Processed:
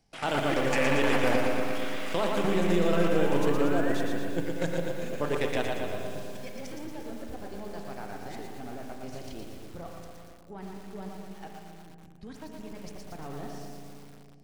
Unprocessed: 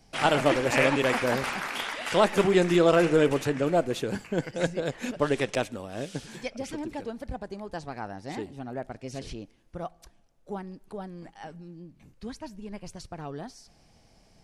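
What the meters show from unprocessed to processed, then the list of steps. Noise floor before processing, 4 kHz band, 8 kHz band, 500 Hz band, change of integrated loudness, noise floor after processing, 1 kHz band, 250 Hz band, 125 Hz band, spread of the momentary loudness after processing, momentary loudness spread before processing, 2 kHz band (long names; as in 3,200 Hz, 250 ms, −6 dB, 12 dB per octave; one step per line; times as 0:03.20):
−61 dBFS, −3.5 dB, −4.0 dB, −3.5 dB, −3.0 dB, −49 dBFS, −3.0 dB, −1.5 dB, −2.0 dB, 19 LU, 20 LU, −3.0 dB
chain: gain on one half-wave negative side −3 dB
output level in coarse steps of 14 dB
sound drawn into the spectrogram rise, 0:02.29–0:03.95, 250–2,000 Hz −43 dBFS
on a send: echo with a time of its own for lows and highs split 630 Hz, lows 245 ms, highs 122 ms, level −9 dB
on the sum: spring reverb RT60 2.1 s, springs 35/42 ms, chirp 70 ms, DRR 5 dB
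feedback echo at a low word length 115 ms, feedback 55%, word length 8 bits, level −5 dB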